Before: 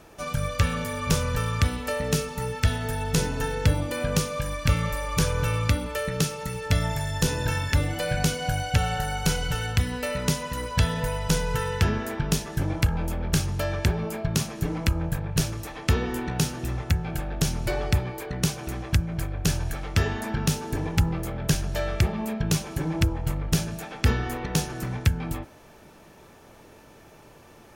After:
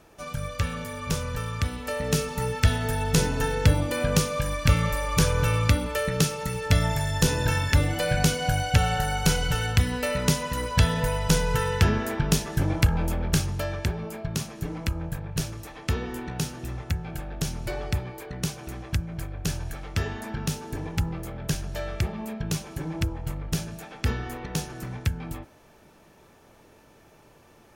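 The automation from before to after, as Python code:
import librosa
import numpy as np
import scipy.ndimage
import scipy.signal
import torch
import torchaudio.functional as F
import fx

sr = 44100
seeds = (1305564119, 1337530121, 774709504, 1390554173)

y = fx.gain(x, sr, db=fx.line((1.67, -4.5), (2.32, 2.0), (13.14, 2.0), (13.92, -4.5)))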